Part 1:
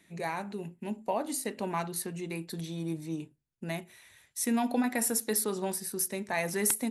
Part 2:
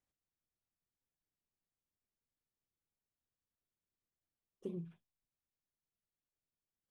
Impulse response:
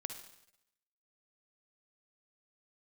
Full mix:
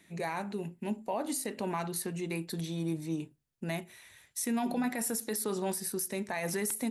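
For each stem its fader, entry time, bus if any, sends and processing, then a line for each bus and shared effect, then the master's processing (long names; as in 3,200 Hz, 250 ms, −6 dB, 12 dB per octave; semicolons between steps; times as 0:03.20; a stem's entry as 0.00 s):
+1.5 dB, 0.00 s, no send, no processing
0.0 dB, 0.00 s, no send, no processing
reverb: not used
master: brickwall limiter −24 dBFS, peak gain reduction 11.5 dB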